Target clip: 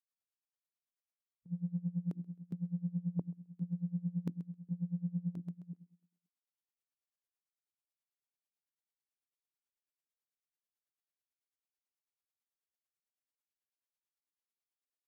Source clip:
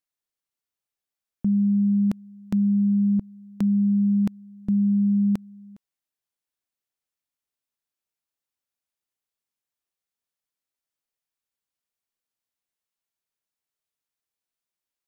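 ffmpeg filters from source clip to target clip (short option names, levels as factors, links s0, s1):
-filter_complex "[0:a]asetrate=38170,aresample=44100,atempo=1.15535,asplit=2[s0][s1];[s1]alimiter=level_in=1.33:limit=0.0631:level=0:latency=1,volume=0.75,volume=1.26[s2];[s0][s2]amix=inputs=2:normalize=0,afwtdn=0.0631,areverse,acompressor=threshold=0.0282:ratio=6,areverse,highpass=200,bandreject=f=50:t=h:w=6,bandreject=f=100:t=h:w=6,bandreject=f=150:t=h:w=6,bandreject=f=200:t=h:w=6,bandreject=f=250:t=h:w=6,bandreject=f=300:t=h:w=6,bandreject=f=350:t=h:w=6,aecho=1:1:132|264|396|528:0.2|0.0738|0.0273|0.0101,aeval=exprs='val(0)*pow(10,-23*(0.5-0.5*cos(2*PI*9.1*n/s))/20)':c=same,volume=1.26"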